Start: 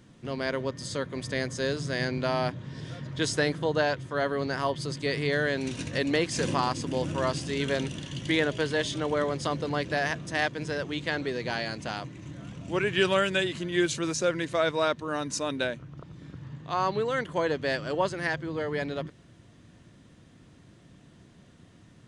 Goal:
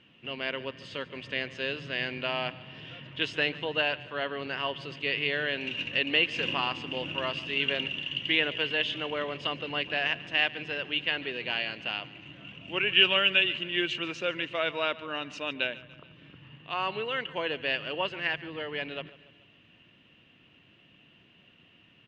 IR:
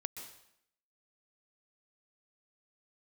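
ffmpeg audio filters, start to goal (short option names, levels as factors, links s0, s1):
-af "lowpass=f=2800:t=q:w=12,lowshelf=f=140:g=-11,aecho=1:1:144|288|432|576:0.112|0.0583|0.0303|0.0158,volume=0.531"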